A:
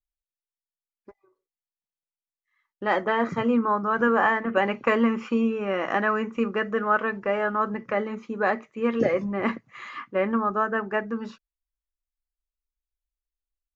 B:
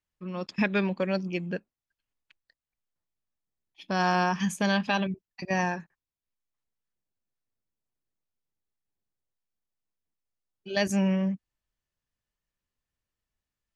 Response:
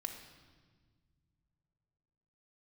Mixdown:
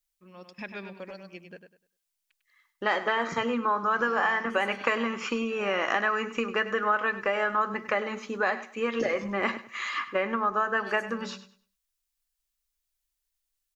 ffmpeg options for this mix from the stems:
-filter_complex "[0:a]highshelf=frequency=2300:gain=11.5,acompressor=threshold=-24dB:ratio=6,volume=2.5dB,asplit=3[link_01][link_02][link_03];[link_02]volume=-14dB[link_04];[1:a]volume=-10.5dB,asplit=2[link_05][link_06];[link_06]volume=-8dB[link_07];[link_03]apad=whole_len=606764[link_08];[link_05][link_08]sidechaincompress=threshold=-41dB:ratio=8:attack=16:release=748[link_09];[link_04][link_07]amix=inputs=2:normalize=0,aecho=0:1:100|200|300|400:1|0.26|0.0676|0.0176[link_10];[link_01][link_09][link_10]amix=inputs=3:normalize=0,equalizer=frequency=110:width_type=o:width=2.7:gain=-9.5"

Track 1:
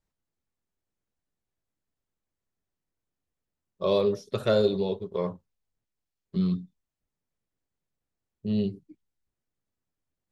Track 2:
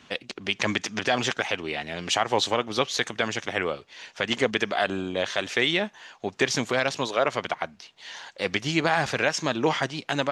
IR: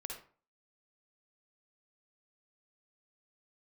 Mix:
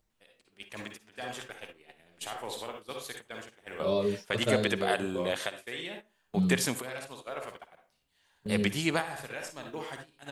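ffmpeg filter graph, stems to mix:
-filter_complex "[0:a]acompressor=mode=upward:threshold=-39dB:ratio=2.5,asplit=2[link_01][link_02];[link_02]adelay=6.1,afreqshift=0.43[link_03];[link_01][link_03]amix=inputs=2:normalize=1,volume=-1.5dB,asplit=2[link_04][link_05];[1:a]aexciter=amount=10.9:drive=6.6:freq=8700,adelay=100,volume=-7dB,asplit=2[link_06][link_07];[link_07]volume=-7dB[link_08];[link_05]apad=whole_len=459501[link_09];[link_06][link_09]sidechaingate=range=-26dB:threshold=-58dB:ratio=16:detection=peak[link_10];[2:a]atrim=start_sample=2205[link_11];[link_08][link_11]afir=irnorm=-1:irlink=0[link_12];[link_04][link_10][link_12]amix=inputs=3:normalize=0,agate=range=-14dB:threshold=-42dB:ratio=16:detection=peak"

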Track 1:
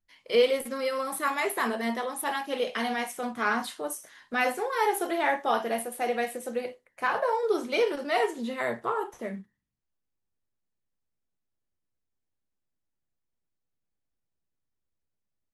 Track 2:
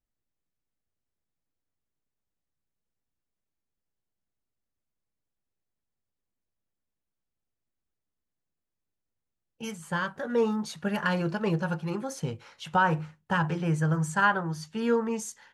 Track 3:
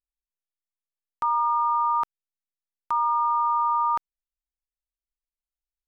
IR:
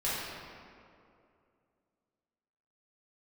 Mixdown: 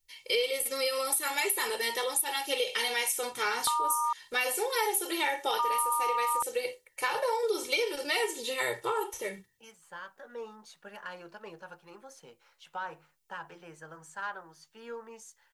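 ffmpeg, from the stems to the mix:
-filter_complex "[0:a]aexciter=amount=4.4:drive=3:freq=2200,aecho=1:1:2.2:0.87,volume=-3dB[link_01];[1:a]highpass=460,asoftclip=type=tanh:threshold=-14.5dB,volume=-12.5dB[link_02];[2:a]adelay=2450,volume=1.5dB,asplit=3[link_03][link_04][link_05];[link_03]atrim=end=4.13,asetpts=PTS-STARTPTS,afade=type=out:start_time=4.126:duration=0.004:curve=hsin[link_06];[link_04]atrim=start=4.13:end=5.59,asetpts=PTS-STARTPTS,volume=0[link_07];[link_05]atrim=start=5.59,asetpts=PTS-STARTPTS,afade=type=in:duration=0.004:curve=hsin[link_08];[link_06][link_07][link_08]concat=n=3:v=0:a=1[link_09];[link_01][link_02][link_09]amix=inputs=3:normalize=0,acompressor=threshold=-26dB:ratio=6"

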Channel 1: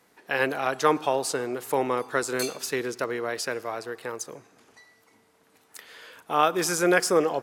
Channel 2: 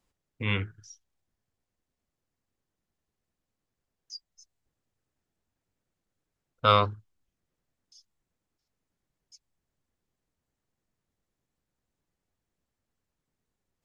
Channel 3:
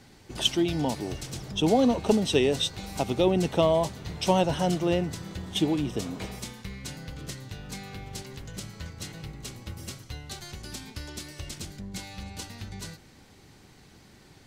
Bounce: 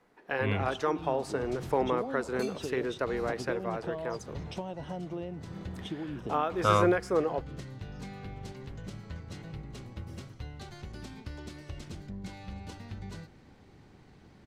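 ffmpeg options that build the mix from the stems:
ffmpeg -i stem1.wav -i stem2.wav -i stem3.wav -filter_complex "[0:a]volume=-1.5dB[link_01];[1:a]volume=-1.5dB[link_02];[2:a]acompressor=threshold=-32dB:ratio=12,adelay=300,volume=-1dB[link_03];[link_01][link_03]amix=inputs=2:normalize=0,alimiter=limit=-15dB:level=0:latency=1:release=432,volume=0dB[link_04];[link_02][link_04]amix=inputs=2:normalize=0,lowpass=frequency=1400:poles=1" out.wav

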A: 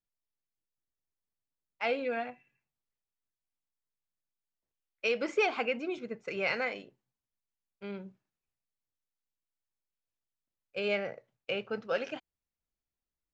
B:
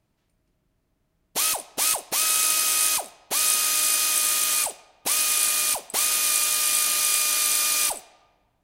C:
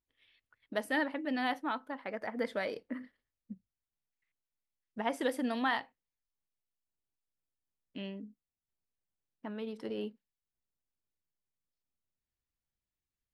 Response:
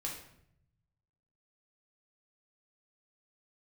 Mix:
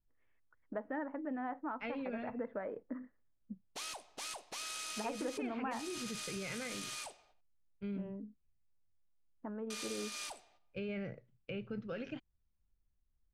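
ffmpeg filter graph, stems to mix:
-filter_complex "[0:a]aemphasis=mode=reproduction:type=riaa,acrossover=split=3000[link_01][link_02];[link_02]acompressor=threshold=-53dB:ratio=4:attack=1:release=60[link_03];[link_01][link_03]amix=inputs=2:normalize=0,equalizer=frequency=770:width=0.79:gain=-13,volume=-0.5dB[link_04];[1:a]agate=range=-10dB:threshold=-52dB:ratio=16:detection=peak,lowpass=5900,adelay=2400,volume=-15.5dB,asplit=3[link_05][link_06][link_07];[link_05]atrim=end=7.41,asetpts=PTS-STARTPTS,afade=type=out:start_time=7.406:duration=0.004:curve=hsin[link_08];[link_06]atrim=start=7.41:end=9.7,asetpts=PTS-STARTPTS,volume=0[link_09];[link_07]atrim=start=9.7,asetpts=PTS-STARTPTS,afade=type=in:duration=0.004:curve=hsin[link_10];[link_08][link_09][link_10]concat=n=3:v=0:a=1[link_11];[2:a]acontrast=78,lowpass=frequency=1500:width=0.5412,lowpass=frequency=1500:width=1.3066,volume=-8dB[link_12];[link_04][link_11]amix=inputs=2:normalize=0,alimiter=level_in=7dB:limit=-24dB:level=0:latency=1:release=36,volume=-7dB,volume=0dB[link_13];[link_12][link_13]amix=inputs=2:normalize=0,acompressor=threshold=-38dB:ratio=2.5"

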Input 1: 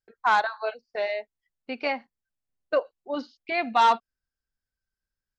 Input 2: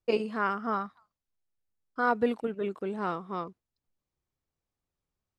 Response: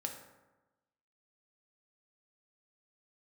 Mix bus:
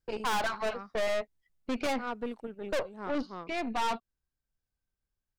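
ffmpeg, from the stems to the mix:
-filter_complex "[0:a]lowshelf=frequency=390:gain=10.5,volume=-1dB,afade=type=out:start_time=2.78:duration=0.68:silence=0.334965,asplit=2[link_01][link_02];[1:a]volume=-11.5dB[link_03];[link_02]apad=whole_len=237423[link_04];[link_03][link_04]sidechaincompress=threshold=-36dB:ratio=8:attack=47:release=161[link_05];[link_01][link_05]amix=inputs=2:normalize=0,acontrast=39,aeval=exprs='(tanh(25.1*val(0)+0.6)-tanh(0.6))/25.1':channel_layout=same"

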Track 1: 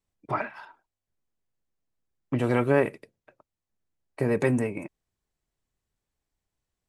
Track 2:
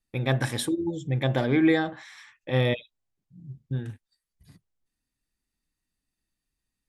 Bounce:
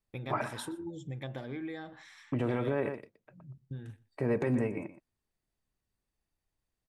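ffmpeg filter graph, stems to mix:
ffmpeg -i stem1.wav -i stem2.wav -filter_complex "[0:a]lowpass=frequency=2300:poles=1,volume=-2.5dB,asplit=2[link_01][link_02];[link_02]volume=-14.5dB[link_03];[1:a]acompressor=threshold=-29dB:ratio=10,volume=-7.5dB,asplit=2[link_04][link_05];[link_05]volume=-22dB[link_06];[link_03][link_06]amix=inputs=2:normalize=0,aecho=0:1:121:1[link_07];[link_01][link_04][link_07]amix=inputs=3:normalize=0,alimiter=limit=-21dB:level=0:latency=1:release=66" out.wav

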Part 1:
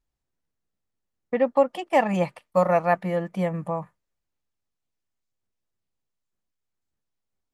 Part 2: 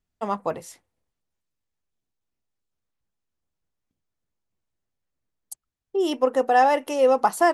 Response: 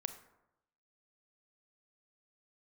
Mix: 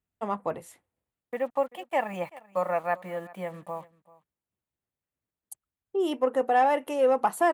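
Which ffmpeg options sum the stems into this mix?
-filter_complex "[0:a]highpass=frequency=540:poles=1,acrusher=bits=7:mix=0:aa=0.5,volume=-4.5dB,asplit=2[link_01][link_02];[link_02]volume=-21.5dB[link_03];[1:a]acontrast=57,volume=-9.5dB[link_04];[link_03]aecho=0:1:387:1[link_05];[link_01][link_04][link_05]amix=inputs=3:normalize=0,highpass=52,equalizer=frequency=5300:width_type=o:width=0.74:gain=-11.5"

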